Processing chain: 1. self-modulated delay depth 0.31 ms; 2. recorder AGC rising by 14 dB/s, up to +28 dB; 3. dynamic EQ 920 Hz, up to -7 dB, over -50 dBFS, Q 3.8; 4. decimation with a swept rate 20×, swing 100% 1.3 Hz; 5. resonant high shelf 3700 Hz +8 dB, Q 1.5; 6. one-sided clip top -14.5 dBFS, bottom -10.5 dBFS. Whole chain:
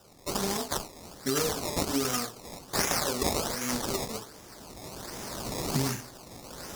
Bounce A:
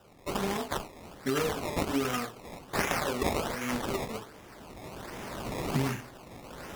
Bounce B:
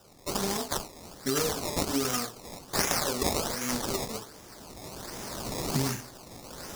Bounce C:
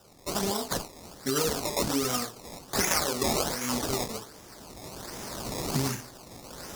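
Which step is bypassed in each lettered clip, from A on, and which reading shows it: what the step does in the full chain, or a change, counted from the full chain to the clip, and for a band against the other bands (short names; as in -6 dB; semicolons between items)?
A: 5, 8 kHz band -9.5 dB; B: 6, distortion -21 dB; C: 1, momentary loudness spread change +1 LU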